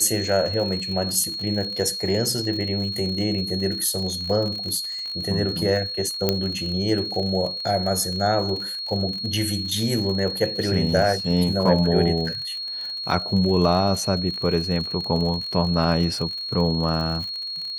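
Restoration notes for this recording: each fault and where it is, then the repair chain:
crackle 54 per s -29 dBFS
whine 4.3 kHz -28 dBFS
6.29 s: pop -5 dBFS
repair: de-click; band-stop 4.3 kHz, Q 30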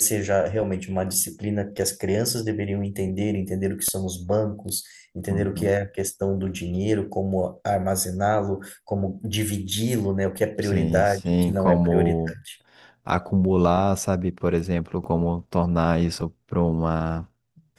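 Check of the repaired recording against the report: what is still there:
nothing left

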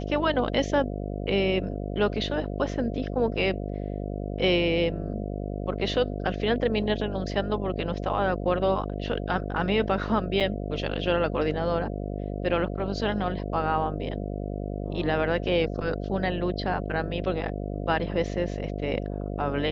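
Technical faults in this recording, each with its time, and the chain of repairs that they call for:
buzz 50 Hz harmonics 14 -32 dBFS
10.40–10.41 s: dropout 6.8 ms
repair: de-hum 50 Hz, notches 14; interpolate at 10.40 s, 6.8 ms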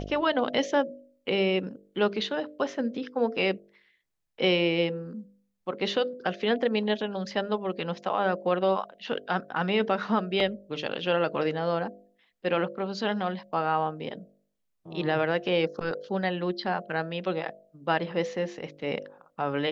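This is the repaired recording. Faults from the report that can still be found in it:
nothing left

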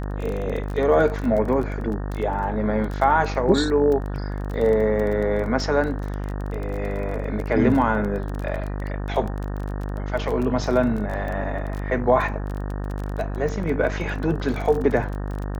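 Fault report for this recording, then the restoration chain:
buzz 50 Hz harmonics 37 -28 dBFS
crackle 21 per s -27 dBFS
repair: de-click; de-hum 50 Hz, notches 37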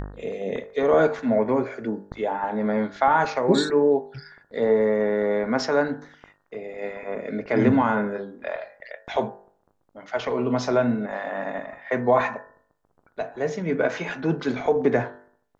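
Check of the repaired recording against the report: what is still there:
nothing left

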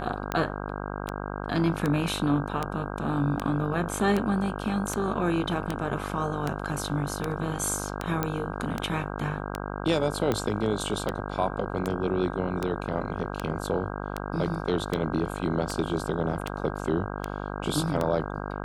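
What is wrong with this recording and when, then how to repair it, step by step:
buzz 50 Hz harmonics 32 -34 dBFS
tick 78 rpm -13 dBFS
8.23 s: pop -11 dBFS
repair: de-click; de-hum 50 Hz, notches 32

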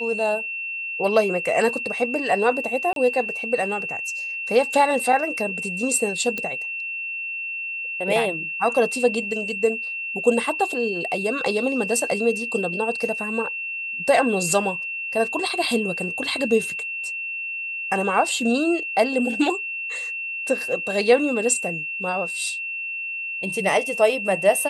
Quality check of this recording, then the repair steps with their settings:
whine 2.7 kHz -27 dBFS
2.93–2.96 s: dropout 32 ms
6.38 s: pop -13 dBFS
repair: de-click; band-stop 2.7 kHz, Q 30; interpolate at 2.93 s, 32 ms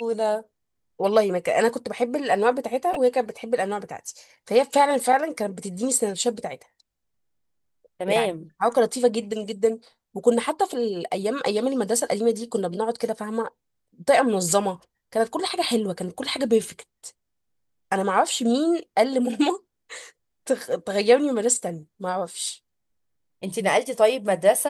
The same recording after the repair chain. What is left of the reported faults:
nothing left

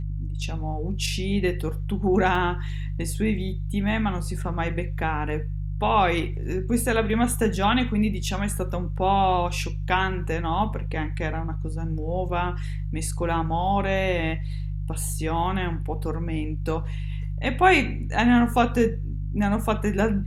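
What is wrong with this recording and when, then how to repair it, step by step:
hum 50 Hz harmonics 3 -29 dBFS
2.35 s: dropout 2.9 ms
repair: de-hum 50 Hz, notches 3; interpolate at 2.35 s, 2.9 ms

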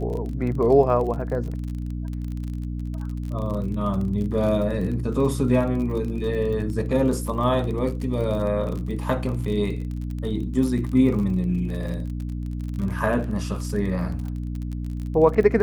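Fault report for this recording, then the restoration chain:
crackle 37 per s -30 dBFS
hum 60 Hz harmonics 5 -29 dBFS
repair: de-click; de-hum 60 Hz, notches 5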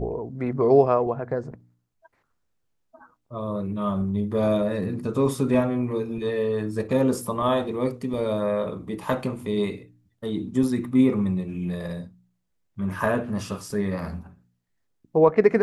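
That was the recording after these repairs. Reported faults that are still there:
nothing left

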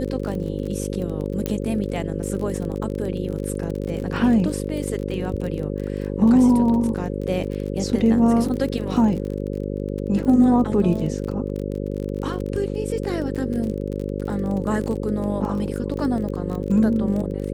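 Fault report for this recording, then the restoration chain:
buzz 50 Hz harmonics 11 -27 dBFS
crackle 31 per s -28 dBFS
1.46 s: pop -10 dBFS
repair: de-click; de-hum 50 Hz, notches 11

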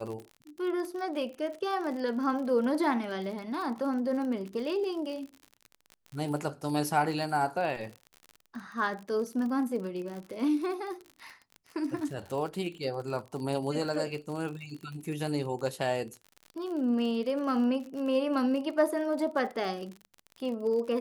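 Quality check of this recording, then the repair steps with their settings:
crackle 48 per s -37 dBFS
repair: de-click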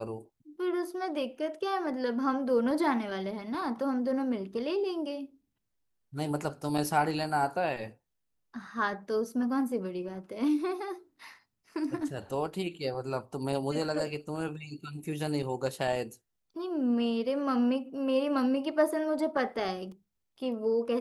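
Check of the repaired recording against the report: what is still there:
nothing left

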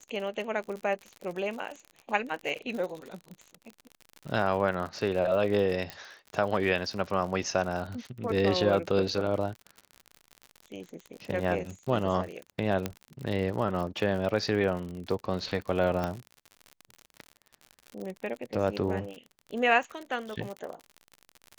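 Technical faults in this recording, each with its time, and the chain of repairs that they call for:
crackle 59 per s -35 dBFS
5.90 s: pop -20 dBFS
12.86 s: pop -15 dBFS
16.04 s: pop -17 dBFS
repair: de-click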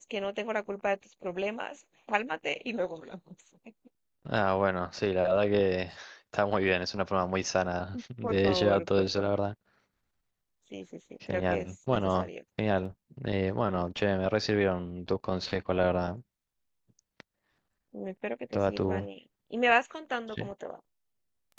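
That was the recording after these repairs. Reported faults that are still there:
12.86 s: pop

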